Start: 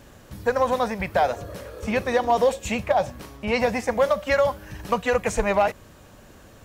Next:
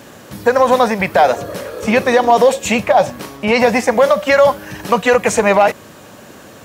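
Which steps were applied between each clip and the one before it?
high-pass filter 160 Hz 12 dB per octave
boost into a limiter +13 dB
level −1 dB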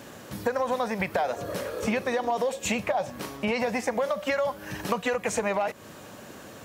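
downward compressor, threshold −18 dBFS, peak gain reduction 11.5 dB
level −6 dB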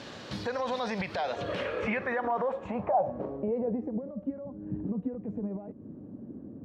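brickwall limiter −24 dBFS, peak gain reduction 11 dB
low-pass filter sweep 4,300 Hz → 270 Hz, 0:01.18–0:04.05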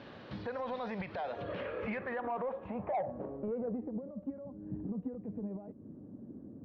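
soft clipping −22 dBFS, distortion −19 dB
high-frequency loss of the air 310 metres
level −4.5 dB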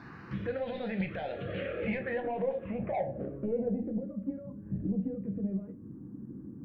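phaser swept by the level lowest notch 490 Hz, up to 1,200 Hz, full sweep at −33.5 dBFS
rectangular room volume 140 cubic metres, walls furnished, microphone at 0.77 metres
level +5 dB

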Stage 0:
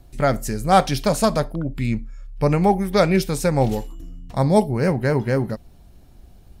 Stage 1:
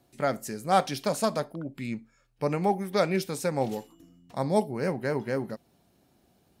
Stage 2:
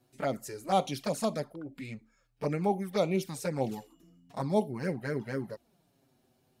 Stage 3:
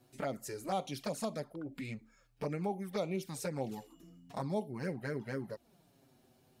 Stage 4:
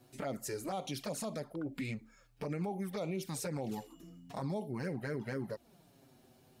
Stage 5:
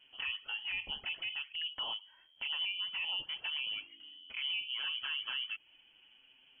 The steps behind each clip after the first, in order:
high-pass filter 190 Hz 12 dB per octave; level −7.5 dB
flanger swept by the level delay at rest 8.1 ms, full sweep at −22 dBFS; level −1.5 dB
downward compressor 2 to 1, threshold −44 dBFS, peak gain reduction 13 dB; level +3 dB
brickwall limiter −33 dBFS, peak gain reduction 9.5 dB; level +3.5 dB
voice inversion scrambler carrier 3,200 Hz

